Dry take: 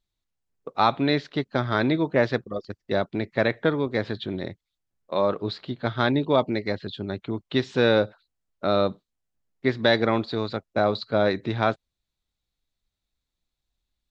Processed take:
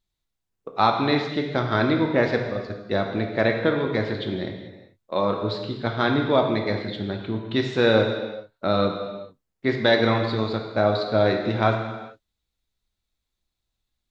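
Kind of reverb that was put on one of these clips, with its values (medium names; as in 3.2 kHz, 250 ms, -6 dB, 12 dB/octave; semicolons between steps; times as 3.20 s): gated-style reverb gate 460 ms falling, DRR 2.5 dB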